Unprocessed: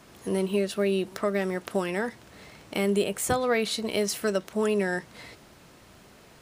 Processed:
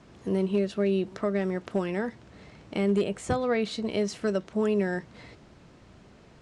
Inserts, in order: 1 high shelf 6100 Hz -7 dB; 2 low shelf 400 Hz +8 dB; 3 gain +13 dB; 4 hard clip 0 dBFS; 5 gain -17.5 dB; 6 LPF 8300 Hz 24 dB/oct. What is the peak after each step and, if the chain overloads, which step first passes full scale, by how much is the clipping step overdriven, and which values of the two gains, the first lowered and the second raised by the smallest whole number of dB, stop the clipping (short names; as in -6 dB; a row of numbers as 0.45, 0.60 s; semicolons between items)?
-13.0, -10.0, +3.0, 0.0, -17.5, -17.5 dBFS; step 3, 3.0 dB; step 3 +10 dB, step 5 -14.5 dB